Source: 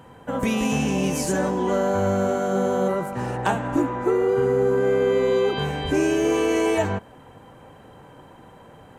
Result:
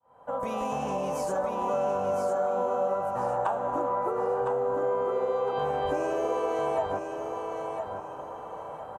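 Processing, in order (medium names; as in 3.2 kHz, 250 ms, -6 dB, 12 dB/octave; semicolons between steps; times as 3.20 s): fade-in on the opening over 0.88 s; high-order bell 810 Hz +16 dB; compression 4:1, threshold -22 dBFS, peak gain reduction 16 dB; on a send: feedback delay 1009 ms, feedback 30%, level -6 dB; on the sum: trim -6.5 dB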